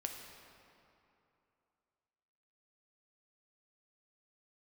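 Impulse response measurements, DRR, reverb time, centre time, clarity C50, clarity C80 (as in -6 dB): 2.0 dB, 2.8 s, 71 ms, 4.0 dB, 5.0 dB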